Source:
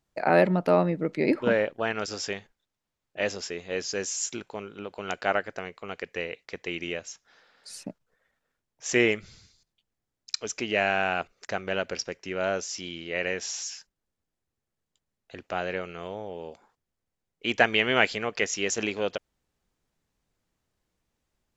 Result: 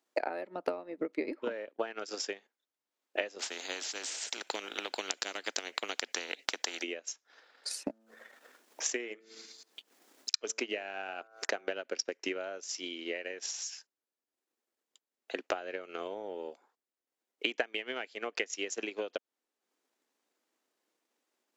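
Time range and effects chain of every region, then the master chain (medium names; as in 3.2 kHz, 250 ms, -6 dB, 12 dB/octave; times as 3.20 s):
3.39–6.83 s: peaking EQ 1.1 kHz -11 dB 0.54 oct + spectrum-flattening compressor 4:1
7.71–11.69 s: de-hum 111.6 Hz, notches 16 + upward compressor, threshold -38 dBFS
whole clip: steep high-pass 260 Hz 36 dB/octave; compression 12:1, threshold -36 dBFS; transient shaper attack +9 dB, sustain -7 dB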